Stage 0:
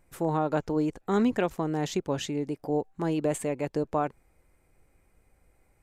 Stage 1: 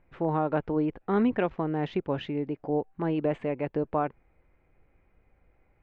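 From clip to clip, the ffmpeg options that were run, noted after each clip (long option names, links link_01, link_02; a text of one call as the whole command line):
ffmpeg -i in.wav -af "lowpass=frequency=2900:width=0.5412,lowpass=frequency=2900:width=1.3066" out.wav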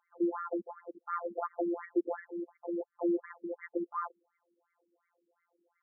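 ffmpeg -i in.wav -af "afftfilt=real='hypot(re,im)*cos(PI*b)':imag='0':win_size=1024:overlap=0.75,afftfilt=real='re*between(b*sr/1024,300*pow(1600/300,0.5+0.5*sin(2*PI*2.8*pts/sr))/1.41,300*pow(1600/300,0.5+0.5*sin(2*PI*2.8*pts/sr))*1.41)':imag='im*between(b*sr/1024,300*pow(1600/300,0.5+0.5*sin(2*PI*2.8*pts/sr))/1.41,300*pow(1600/300,0.5+0.5*sin(2*PI*2.8*pts/sr))*1.41)':win_size=1024:overlap=0.75,volume=3.5dB" out.wav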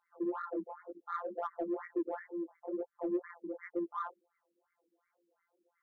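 ffmpeg -i in.wav -filter_complex "[0:a]flanger=delay=17:depth=7.5:speed=2.1,asplit=2[link_01][link_02];[link_02]asoftclip=type=tanh:threshold=-35dB,volume=-8dB[link_03];[link_01][link_03]amix=inputs=2:normalize=0,volume=-1.5dB" out.wav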